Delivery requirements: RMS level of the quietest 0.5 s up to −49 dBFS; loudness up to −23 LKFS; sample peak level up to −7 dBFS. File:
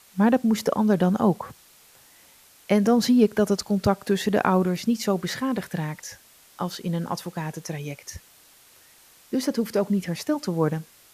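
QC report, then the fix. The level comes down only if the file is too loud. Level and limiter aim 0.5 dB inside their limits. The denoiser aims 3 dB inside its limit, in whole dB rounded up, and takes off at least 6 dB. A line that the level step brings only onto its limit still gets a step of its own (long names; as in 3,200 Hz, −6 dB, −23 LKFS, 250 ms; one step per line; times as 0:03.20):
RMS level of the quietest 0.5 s −54 dBFS: in spec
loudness −24.0 LKFS: in spec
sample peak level −6.0 dBFS: out of spec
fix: brickwall limiter −7.5 dBFS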